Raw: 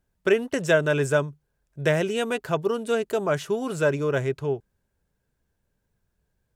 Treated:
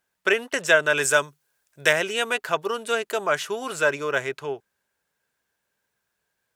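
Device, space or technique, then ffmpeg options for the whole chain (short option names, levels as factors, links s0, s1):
filter by subtraction: -filter_complex "[0:a]asettb=1/sr,asplit=3[s0][s1][s2];[s0]atrim=end=0.974[s3];[s1]atrim=start=0.97:end=1.93,asetpts=PTS-STARTPTS,afade=t=in:d=0.004:c=qsin,afade=t=out:st=0.956:d=0.004:c=qsin,highshelf=f=3900:g=9.5[s4];[s2]atrim=start=1.926[s5];[s3][s4]acrossfade=d=0.004:c1=hsin:c2=qsin[s6];[s6][s5]acrossfade=d=0.004:c1=qsin:c2=hsin,asplit=2[s7][s8];[s8]lowpass=1600,volume=-1[s9];[s7][s9]amix=inputs=2:normalize=0,volume=1.78"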